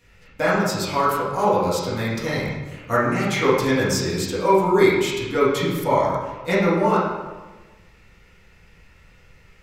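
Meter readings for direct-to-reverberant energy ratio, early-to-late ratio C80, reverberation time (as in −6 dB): −10.5 dB, 3.0 dB, 1.2 s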